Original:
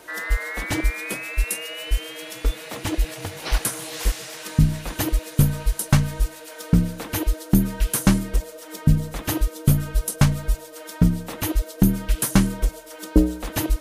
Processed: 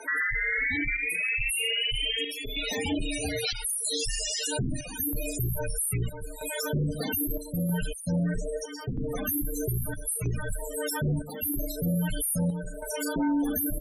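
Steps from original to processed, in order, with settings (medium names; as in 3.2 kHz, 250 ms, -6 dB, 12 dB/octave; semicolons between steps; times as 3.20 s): on a send: flutter echo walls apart 6.1 m, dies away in 0.52 s; on the sum: saturation -20 dBFS, distortion -6 dB; treble shelf 2 kHz +12 dB; loudest bins only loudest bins 16; square tremolo 0.78 Hz, depth 60%, duty 75%; in parallel at -2 dB: compression, threshold -32 dBFS, peak gain reduction 12.5 dB; on the sum: bass shelf 100 Hz -11.5 dB; frequency shift -22 Hz; peak limiter -21.5 dBFS, peak gain reduction 11.5 dB; 7.87–8.81 s: low-pass 7.7 kHz 24 dB/octave; trim +1 dB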